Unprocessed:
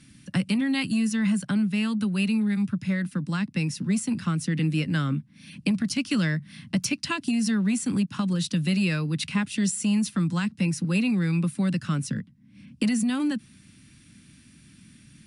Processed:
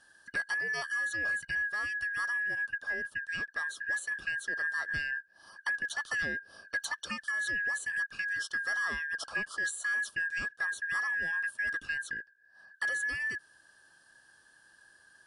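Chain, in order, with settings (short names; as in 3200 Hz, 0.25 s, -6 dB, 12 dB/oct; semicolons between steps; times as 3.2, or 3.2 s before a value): four-band scrambler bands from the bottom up 2143; gain -9 dB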